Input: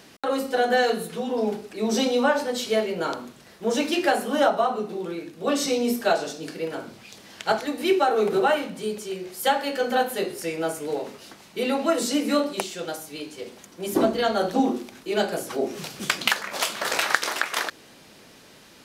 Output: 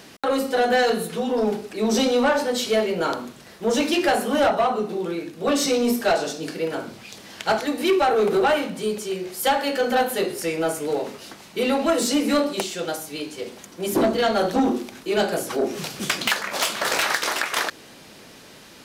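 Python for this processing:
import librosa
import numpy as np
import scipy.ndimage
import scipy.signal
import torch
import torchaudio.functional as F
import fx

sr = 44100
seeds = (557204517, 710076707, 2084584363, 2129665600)

y = 10.0 ** (-17.5 / 20.0) * np.tanh(x / 10.0 ** (-17.5 / 20.0))
y = y * librosa.db_to_amplitude(4.5)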